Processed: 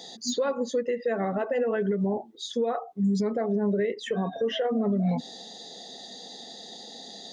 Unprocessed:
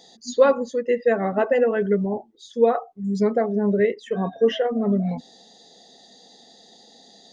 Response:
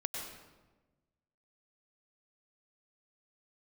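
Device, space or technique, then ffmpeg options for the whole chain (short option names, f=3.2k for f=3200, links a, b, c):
broadcast voice chain: -af "highpass=110,deesser=0.7,acompressor=threshold=-26dB:ratio=4,equalizer=f=3.7k:t=o:w=0.29:g=3,alimiter=level_in=1dB:limit=-24dB:level=0:latency=1:release=145,volume=-1dB,volume=6.5dB"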